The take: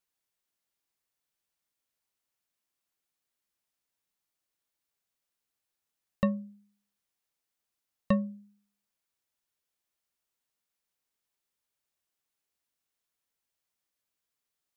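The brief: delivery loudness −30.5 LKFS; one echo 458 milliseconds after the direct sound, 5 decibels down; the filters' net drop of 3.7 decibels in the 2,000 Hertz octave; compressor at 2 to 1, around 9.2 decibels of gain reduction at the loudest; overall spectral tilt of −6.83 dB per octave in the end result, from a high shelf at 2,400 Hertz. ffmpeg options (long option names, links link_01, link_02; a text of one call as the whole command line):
ffmpeg -i in.wav -af "equalizer=frequency=2000:width_type=o:gain=-6.5,highshelf=frequency=2400:gain=4.5,acompressor=threshold=-38dB:ratio=2,aecho=1:1:458:0.562,volume=12dB" out.wav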